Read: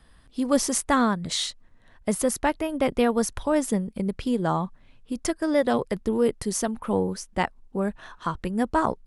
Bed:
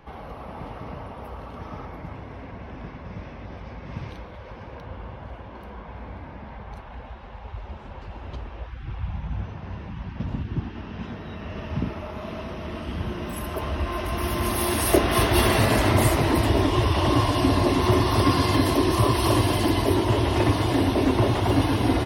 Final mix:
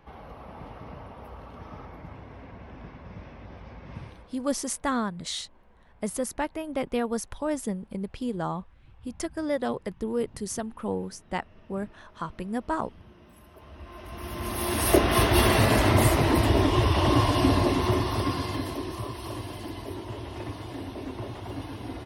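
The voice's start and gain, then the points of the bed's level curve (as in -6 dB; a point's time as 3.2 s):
3.95 s, -6.0 dB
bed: 4 s -6 dB
4.6 s -21.5 dB
13.55 s -21.5 dB
14.89 s -1 dB
17.49 s -1 dB
19.15 s -15.5 dB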